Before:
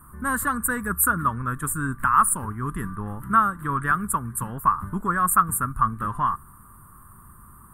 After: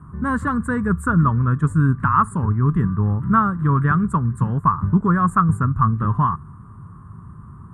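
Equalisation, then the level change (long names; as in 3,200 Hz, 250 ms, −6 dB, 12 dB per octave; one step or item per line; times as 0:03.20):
loudspeaker in its box 100–6,800 Hz, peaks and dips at 100 Hz +5 dB, 160 Hz +6 dB, 430 Hz +4 dB, 1,000 Hz +3 dB
spectral tilt −2 dB per octave
low-shelf EQ 230 Hz +8 dB
0.0 dB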